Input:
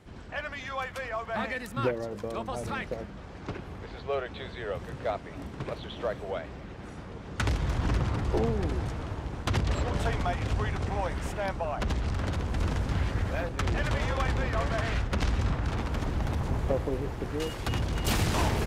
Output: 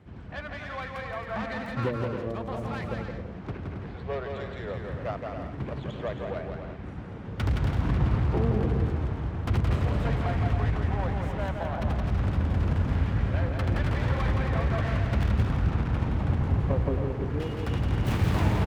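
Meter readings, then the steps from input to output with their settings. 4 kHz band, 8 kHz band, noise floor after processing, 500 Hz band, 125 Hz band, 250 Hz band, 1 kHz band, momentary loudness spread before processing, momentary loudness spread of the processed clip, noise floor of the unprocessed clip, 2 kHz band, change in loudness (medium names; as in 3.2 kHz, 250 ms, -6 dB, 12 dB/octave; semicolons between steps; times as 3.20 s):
-5.0 dB, under -10 dB, -39 dBFS, 0.0 dB, +5.0 dB, +3.5 dB, -1.0 dB, 10 LU, 11 LU, -43 dBFS, -1.5 dB, +2.5 dB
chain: self-modulated delay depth 0.21 ms; high-pass 60 Hz; tone controls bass +7 dB, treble -12 dB; bouncing-ball echo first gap 170 ms, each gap 0.6×, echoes 5; trim -2.5 dB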